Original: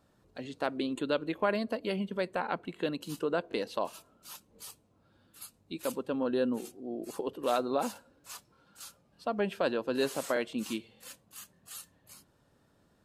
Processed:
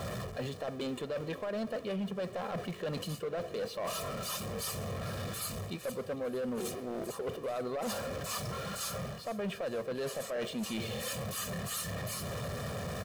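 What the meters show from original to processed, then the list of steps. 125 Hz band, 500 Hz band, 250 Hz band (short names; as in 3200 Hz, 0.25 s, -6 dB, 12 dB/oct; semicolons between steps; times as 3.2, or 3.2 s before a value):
+8.0 dB, -2.5 dB, -3.5 dB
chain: zero-crossing step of -43 dBFS; HPF 91 Hz 12 dB/oct; tilt -1.5 dB/oct; comb 1.7 ms, depth 76%; limiter -21.5 dBFS, peak gain reduction 10 dB; reverse; compressor 8:1, threshold -40 dBFS, peak gain reduction 14.5 dB; reverse; hard clip -39.5 dBFS, distortion -15 dB; on a send: feedback echo 0.453 s, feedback 55%, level -19 dB; on the sum: gain +8 dB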